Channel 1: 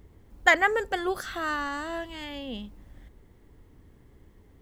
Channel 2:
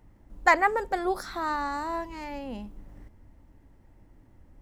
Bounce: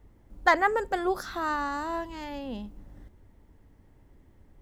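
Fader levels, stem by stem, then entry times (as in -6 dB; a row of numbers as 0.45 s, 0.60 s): -7.5 dB, -3.0 dB; 0.00 s, 0.00 s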